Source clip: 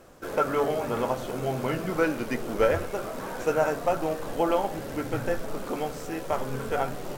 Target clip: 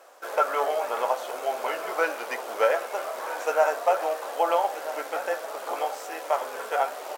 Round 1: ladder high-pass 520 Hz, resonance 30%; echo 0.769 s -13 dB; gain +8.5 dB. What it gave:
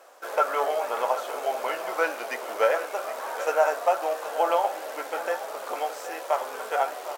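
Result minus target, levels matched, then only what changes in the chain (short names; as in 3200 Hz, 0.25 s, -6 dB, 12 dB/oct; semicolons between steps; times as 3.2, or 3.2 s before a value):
echo 0.515 s early
change: echo 1.284 s -13 dB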